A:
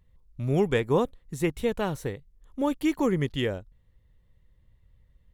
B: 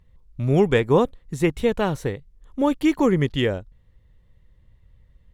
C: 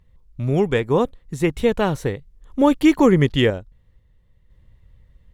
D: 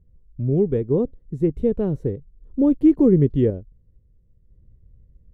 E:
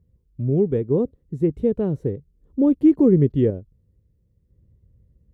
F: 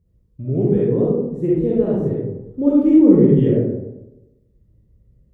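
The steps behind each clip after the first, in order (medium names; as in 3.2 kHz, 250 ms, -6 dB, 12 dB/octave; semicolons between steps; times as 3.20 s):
treble shelf 9.5 kHz -9.5 dB; trim +6 dB
random-step tremolo 2 Hz; trim +5 dB
FFT filter 420 Hz 0 dB, 870 Hz -19 dB, 3.3 kHz -27 dB
high-pass 65 Hz 12 dB/octave
reverberation RT60 1.0 s, pre-delay 10 ms, DRR -6.5 dB; trim -3.5 dB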